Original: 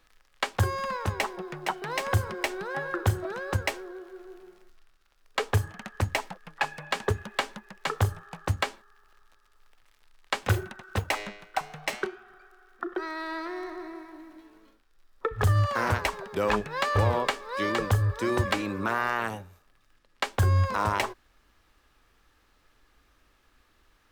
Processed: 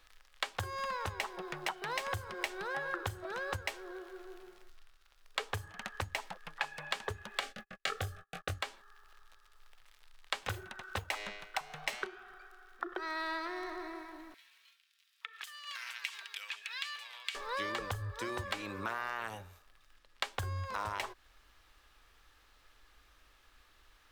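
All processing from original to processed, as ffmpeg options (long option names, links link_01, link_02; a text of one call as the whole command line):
ffmpeg -i in.wav -filter_complex "[0:a]asettb=1/sr,asplit=3[link_01][link_02][link_03];[link_01]atrim=end=7.404[link_04];[link_02]atrim=start=7.4:end=8.59,asetpts=PTS-STARTPTS,afade=type=in:duration=0.004:curve=qsin,afade=type=out:start_time=1.186:duration=0.004:curve=qsin,agate=range=-37dB:threshold=-46dB:ratio=16:release=100:detection=peak,asuperstop=centerf=950:order=12:qfactor=3.2,asplit=2[link_05][link_06];[link_06]adelay=22,volume=-2dB[link_07];[link_05][link_07]amix=inputs=2:normalize=0,atrim=end_sample=52479[link_08];[link_03]atrim=start=8.586[link_09];[link_04][link_08]acrossfade=duration=0.004:curve1=hsin:curve2=qsin[link_10];[link_10][link_09]acrossfade=duration=0.004:curve1=qsin:curve2=hsin,asettb=1/sr,asplit=3[link_11][link_12][link_13];[link_11]atrim=end=14.344[link_14];[link_12]atrim=start=14.34:end=17.35,asetpts=PTS-STARTPTS,afade=type=in:duration=0.004:curve=qsin,afade=type=out:start_time=3.006:duration=0.004:curve=qsin,aecho=1:1:4.4:0.31,atrim=end_sample=132741,acompressor=threshold=-32dB:ratio=16:attack=3.2:release=140:knee=1:detection=peak,highpass=frequency=2600:width_type=q:width=1.8[link_15];[link_13]atrim=start=17.346[link_16];[link_14][link_15]acrossfade=duration=0.004:curve1=hsin:curve2=qsin[link_17];[link_17][link_16]acrossfade=duration=0.004:curve1=qsin:curve2=hsin,equalizer=frequency=3500:width_type=o:width=0.77:gain=2.5,acompressor=threshold=-33dB:ratio=6,equalizer=frequency=200:width_type=o:width=2.3:gain=-9,volume=1dB" out.wav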